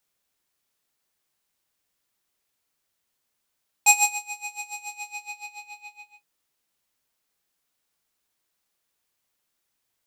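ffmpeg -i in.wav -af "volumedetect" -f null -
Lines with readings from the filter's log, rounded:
mean_volume: -34.7 dB
max_volume: -4.0 dB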